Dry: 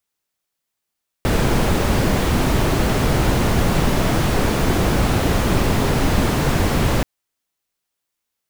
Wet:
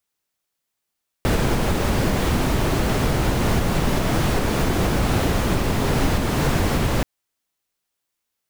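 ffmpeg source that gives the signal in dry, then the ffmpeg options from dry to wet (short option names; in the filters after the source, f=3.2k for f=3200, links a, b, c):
-f lavfi -i "anoisesrc=c=brown:a=0.7:d=5.78:r=44100:seed=1"
-af "alimiter=limit=-10dB:level=0:latency=1:release=316"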